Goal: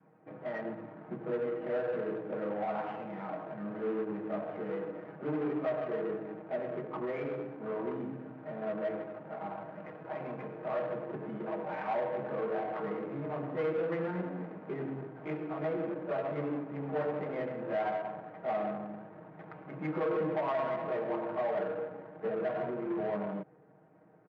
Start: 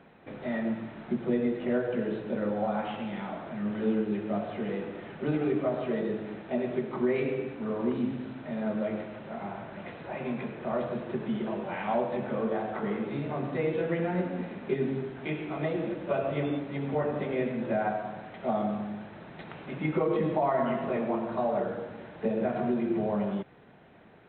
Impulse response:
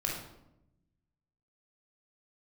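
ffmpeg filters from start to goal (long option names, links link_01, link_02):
-af "equalizer=frequency=290:width=0.34:gain=-10,aecho=1:1:6.4:0.71,adynamicequalizer=threshold=0.00398:dfrequency=480:dqfactor=1.1:tfrequency=480:tqfactor=1.1:attack=5:release=100:ratio=0.375:range=2:mode=boostabove:tftype=bell,asoftclip=type=tanh:threshold=-31.5dB,acrusher=bits=3:mode=log:mix=0:aa=0.000001,adynamicsmooth=sensitivity=5:basefreq=710,highpass=170,lowpass=2200,volume=3.5dB"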